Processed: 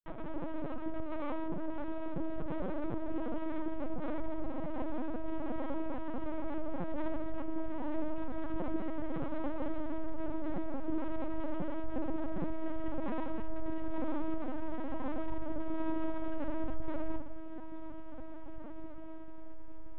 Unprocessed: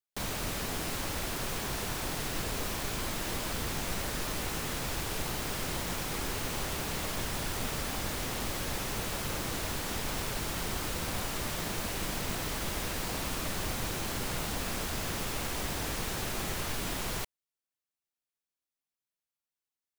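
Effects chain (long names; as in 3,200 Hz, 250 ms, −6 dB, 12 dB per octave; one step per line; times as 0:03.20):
elliptic low-pass filter 680 Hz, stop band 60 dB
parametric band 81 Hz −13.5 dB 0.61 octaves
mains-hum notches 50/100/150/200 Hz
in parallel at +1 dB: brickwall limiter −35 dBFS, peak gain reduction 9 dB
on the sum: sine wavefolder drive 7 dB, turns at −22.5 dBFS
multi-voice chorus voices 6, 0.13 Hz, delay 21 ms, depth 1.9 ms
full-wave rectification
granular cloud 172 ms, grains 15 per second, pitch spread up and down by 0 semitones
feedback delay with all-pass diffusion 1,970 ms, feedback 62%, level −11 dB
on a send at −4 dB: convolution reverb RT60 0.55 s, pre-delay 3 ms
on the sum: linear-prediction vocoder at 8 kHz pitch kept
level −6 dB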